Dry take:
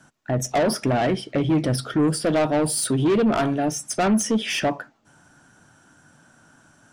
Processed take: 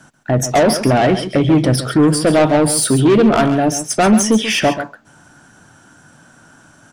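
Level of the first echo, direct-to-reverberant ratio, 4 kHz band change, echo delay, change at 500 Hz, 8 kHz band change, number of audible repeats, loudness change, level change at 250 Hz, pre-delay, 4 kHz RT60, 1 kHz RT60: −11.5 dB, no reverb audible, +8.5 dB, 136 ms, +8.5 dB, +8.5 dB, 1, +8.5 dB, +8.0 dB, no reverb audible, no reverb audible, no reverb audible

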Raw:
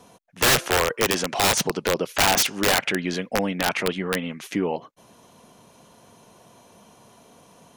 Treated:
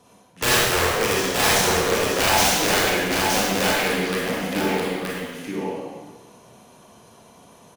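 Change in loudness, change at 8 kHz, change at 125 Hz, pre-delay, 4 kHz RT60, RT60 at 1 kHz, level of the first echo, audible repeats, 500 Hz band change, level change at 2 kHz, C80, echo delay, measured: +2.0 dB, +2.5 dB, +2.5 dB, 28 ms, 1.3 s, 1.4 s, −3.5 dB, 1, +3.0 dB, +3.0 dB, −2.0 dB, 922 ms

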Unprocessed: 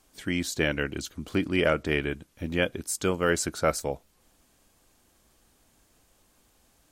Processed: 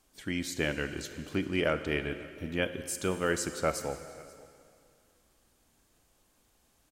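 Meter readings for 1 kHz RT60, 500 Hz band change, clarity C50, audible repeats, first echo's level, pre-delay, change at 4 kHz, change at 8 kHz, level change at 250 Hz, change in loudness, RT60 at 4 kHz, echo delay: 2.2 s, −4.5 dB, 10.5 dB, 1, −23.5 dB, 26 ms, −4.5 dB, −4.5 dB, −4.5 dB, −4.5 dB, 2.2 s, 535 ms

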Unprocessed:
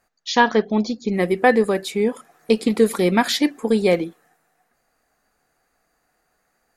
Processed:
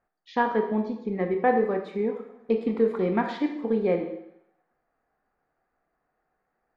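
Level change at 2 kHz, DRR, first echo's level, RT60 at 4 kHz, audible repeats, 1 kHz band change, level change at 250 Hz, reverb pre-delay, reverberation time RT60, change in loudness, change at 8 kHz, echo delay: −11.0 dB, 4.5 dB, no echo audible, 0.75 s, no echo audible, −6.0 dB, −7.0 dB, 19 ms, 0.75 s, −7.0 dB, below −30 dB, no echo audible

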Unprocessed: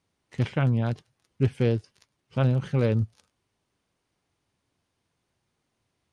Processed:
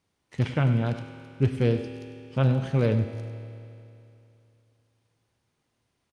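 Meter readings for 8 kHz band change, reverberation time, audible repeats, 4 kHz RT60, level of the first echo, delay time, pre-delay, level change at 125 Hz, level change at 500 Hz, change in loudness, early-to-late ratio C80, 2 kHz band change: can't be measured, 2.8 s, 1, 2.8 s, −13.5 dB, 99 ms, 5 ms, +0.5 dB, +0.5 dB, +0.5 dB, 7.5 dB, +1.0 dB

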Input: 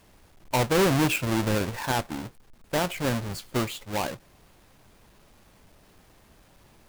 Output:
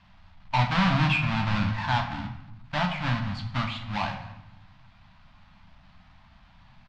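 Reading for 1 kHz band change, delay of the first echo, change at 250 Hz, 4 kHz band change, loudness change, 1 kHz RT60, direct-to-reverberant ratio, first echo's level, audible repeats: +2.5 dB, 216 ms, −1.5 dB, +0.5 dB, 0.0 dB, 0.85 s, 3.0 dB, −20.0 dB, 1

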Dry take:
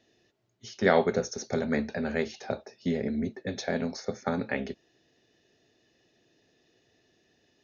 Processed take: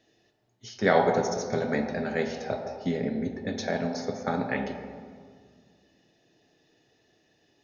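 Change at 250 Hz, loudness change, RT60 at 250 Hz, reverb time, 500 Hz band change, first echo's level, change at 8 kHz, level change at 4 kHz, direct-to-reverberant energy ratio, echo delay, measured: +0.5 dB, +1.5 dB, 2.3 s, 1.9 s, +1.5 dB, no echo audible, can't be measured, +1.0 dB, 2.5 dB, no echo audible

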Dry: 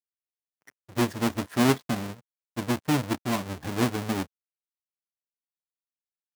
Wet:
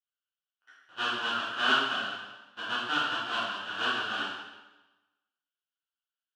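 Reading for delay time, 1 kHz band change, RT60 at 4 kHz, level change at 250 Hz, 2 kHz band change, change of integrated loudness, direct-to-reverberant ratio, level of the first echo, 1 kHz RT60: no echo audible, +1.5 dB, 1.0 s, −16.5 dB, +7.0 dB, −2.0 dB, −9.5 dB, no echo audible, 1.1 s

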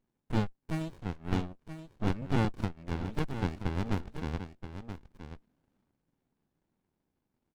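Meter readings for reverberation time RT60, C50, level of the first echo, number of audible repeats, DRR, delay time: no reverb audible, no reverb audible, −10.5 dB, 1, no reverb audible, 977 ms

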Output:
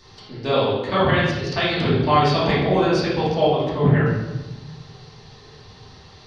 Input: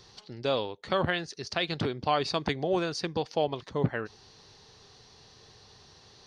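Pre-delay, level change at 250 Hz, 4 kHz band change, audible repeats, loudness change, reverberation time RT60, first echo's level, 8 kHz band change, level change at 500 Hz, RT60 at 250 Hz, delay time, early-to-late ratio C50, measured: 3 ms, +12.5 dB, +7.5 dB, no echo audible, +10.5 dB, 1.0 s, no echo audible, can't be measured, +10.0 dB, 1.7 s, no echo audible, 0.0 dB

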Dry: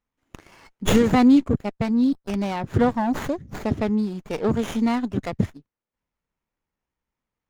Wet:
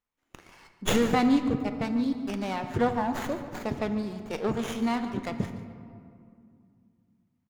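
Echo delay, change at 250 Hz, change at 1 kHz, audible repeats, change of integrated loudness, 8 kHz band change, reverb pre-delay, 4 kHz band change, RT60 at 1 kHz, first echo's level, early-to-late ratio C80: 144 ms, −7.0 dB, −3.0 dB, 1, −6.5 dB, −2.5 dB, 3 ms, −2.5 dB, 2.3 s, −14.5 dB, 9.0 dB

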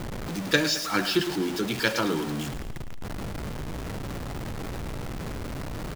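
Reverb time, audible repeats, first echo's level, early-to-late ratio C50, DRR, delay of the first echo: no reverb audible, 4, −13.0 dB, no reverb audible, no reverb audible, 108 ms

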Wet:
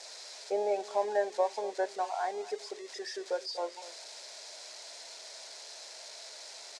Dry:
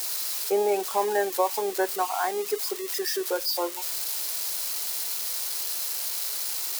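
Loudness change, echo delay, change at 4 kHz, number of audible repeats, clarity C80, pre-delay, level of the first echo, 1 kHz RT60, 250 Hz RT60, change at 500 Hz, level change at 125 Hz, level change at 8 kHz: −10.0 dB, 242 ms, −10.5 dB, 1, no reverb audible, no reverb audible, −17.0 dB, no reverb audible, no reverb audible, −5.5 dB, can't be measured, −16.0 dB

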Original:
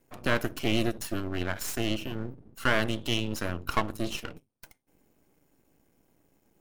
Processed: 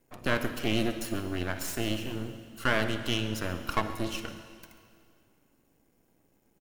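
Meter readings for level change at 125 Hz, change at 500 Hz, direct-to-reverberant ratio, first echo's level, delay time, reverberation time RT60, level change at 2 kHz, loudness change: −1.0 dB, −1.0 dB, 8.5 dB, −17.5 dB, 138 ms, 2.2 s, −1.0 dB, −1.0 dB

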